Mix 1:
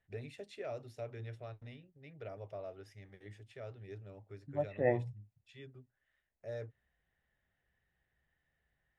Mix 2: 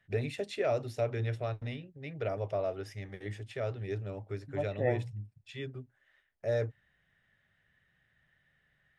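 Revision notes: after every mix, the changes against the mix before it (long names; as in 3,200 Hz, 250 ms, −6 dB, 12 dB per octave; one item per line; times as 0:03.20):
first voice +12.0 dB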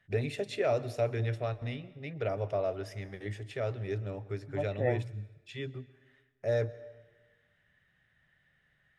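reverb: on, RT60 1.4 s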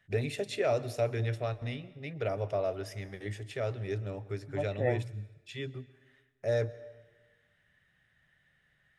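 master: add high-shelf EQ 5,600 Hz +7 dB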